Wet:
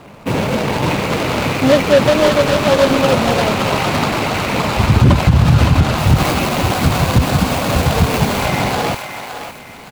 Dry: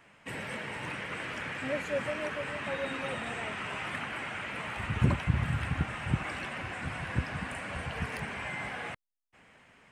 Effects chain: median filter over 25 samples; 5.98–8.46 high shelf 8900 Hz +11 dB; thinning echo 0.565 s, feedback 42%, high-pass 970 Hz, level -5.5 dB; dynamic EQ 4500 Hz, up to +4 dB, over -56 dBFS, Q 0.77; echo 0.51 s -24 dB; maximiser +26 dB; gain -1 dB

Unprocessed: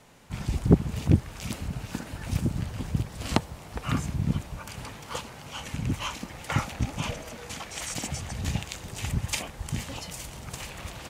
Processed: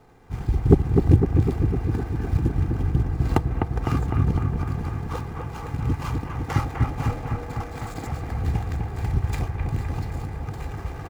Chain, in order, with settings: median filter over 15 samples; low shelf 320 Hz +3.5 dB; notch 570 Hz, Q 15; comb 2.5 ms, depth 48%; on a send: analogue delay 0.253 s, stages 4096, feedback 72%, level -4 dB; on the sum: gain +1.5 dB

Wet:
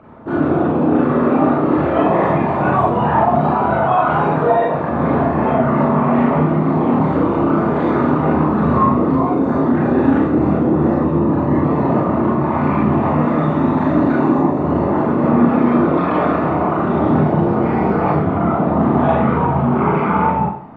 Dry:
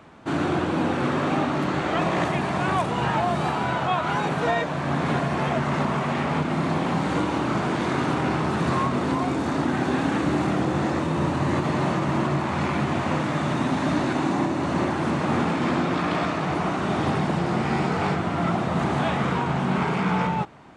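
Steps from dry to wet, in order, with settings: formant sharpening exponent 2; Schroeder reverb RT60 0.5 s, combs from 26 ms, DRR -5 dB; gain +3 dB

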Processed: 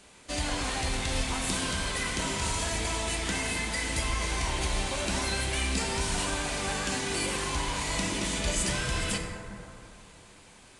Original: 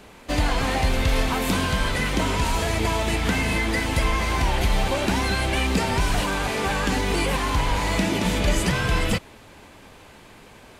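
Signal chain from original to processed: downsampling 22050 Hz; pre-emphasis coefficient 0.8; plate-style reverb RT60 2.8 s, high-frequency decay 0.3×, DRR 1.5 dB; gain +1.5 dB

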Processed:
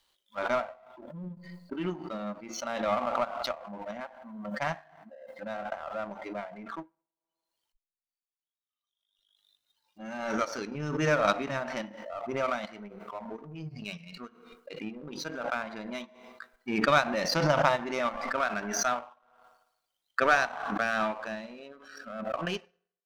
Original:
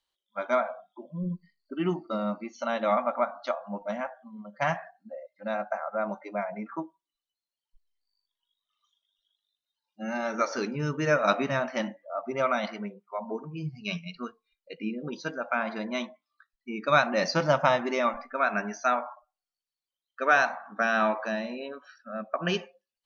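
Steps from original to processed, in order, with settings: FDN reverb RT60 1 s, low-frequency decay 0.75×, high-frequency decay 0.7×, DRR 18 dB; power-law curve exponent 1.4; backwards sustainer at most 44 dB/s

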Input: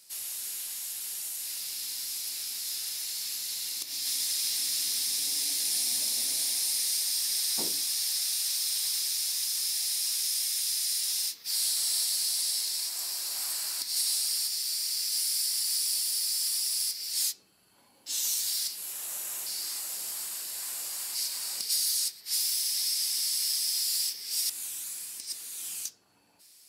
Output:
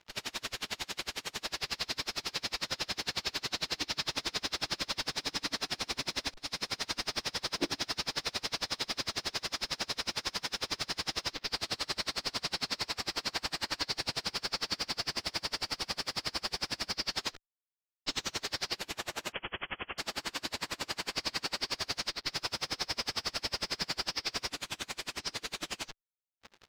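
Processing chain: bell 310 Hz +6.5 dB; 6.34–6.95 fade in; fuzz box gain 56 dB, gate -49 dBFS; air absorption 210 m; 19.32–19.98 inverted band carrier 3300 Hz; dB-linear tremolo 11 Hz, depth 34 dB; gain -4.5 dB

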